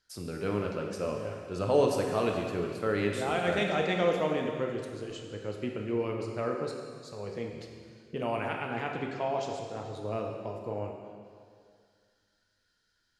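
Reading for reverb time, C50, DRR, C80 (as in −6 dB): 2.2 s, 3.0 dB, 1.0 dB, 4.5 dB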